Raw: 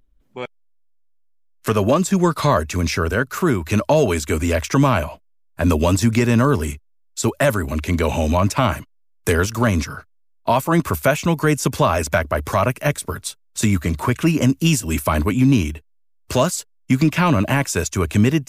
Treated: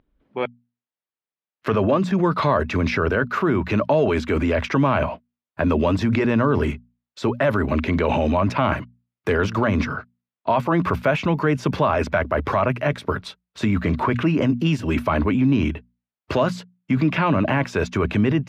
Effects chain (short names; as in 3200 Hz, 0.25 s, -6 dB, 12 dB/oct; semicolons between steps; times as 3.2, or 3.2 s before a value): HPF 160 Hz 6 dB/oct; notches 60/120/180/240 Hz; in parallel at +0.5 dB: negative-ratio compressor -25 dBFS, ratio -1; on the sum: air absorption 330 m; gain -2.5 dB